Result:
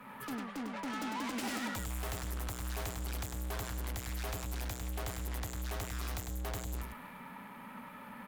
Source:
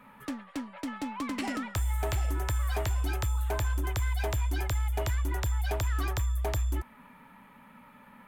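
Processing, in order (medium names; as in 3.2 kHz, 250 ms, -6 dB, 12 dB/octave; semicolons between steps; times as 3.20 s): valve stage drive 47 dB, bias 0.45; treble shelf 4.7 kHz +6 dB; on a send: delay 101 ms -5 dB; on the sum: three bands expanded up and down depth 40%; trim +8.5 dB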